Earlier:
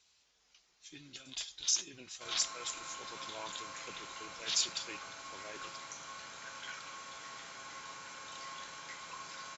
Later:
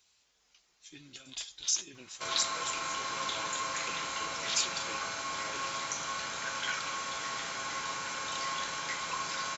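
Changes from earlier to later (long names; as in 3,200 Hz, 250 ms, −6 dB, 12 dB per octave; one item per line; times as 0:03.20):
speech: remove Chebyshev low-pass filter 6,300 Hz, order 2
background +11.0 dB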